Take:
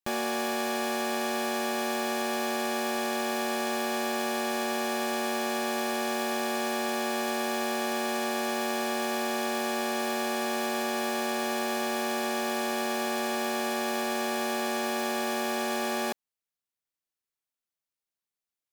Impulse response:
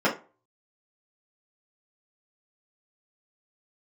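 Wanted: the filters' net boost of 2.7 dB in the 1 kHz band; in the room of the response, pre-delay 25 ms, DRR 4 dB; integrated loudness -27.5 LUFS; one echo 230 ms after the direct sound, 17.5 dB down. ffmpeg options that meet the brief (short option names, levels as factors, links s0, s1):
-filter_complex "[0:a]equalizer=f=1000:t=o:g=3.5,aecho=1:1:230:0.133,asplit=2[s0][s1];[1:a]atrim=start_sample=2205,adelay=25[s2];[s1][s2]afir=irnorm=-1:irlink=0,volume=0.1[s3];[s0][s3]amix=inputs=2:normalize=0,volume=0.944"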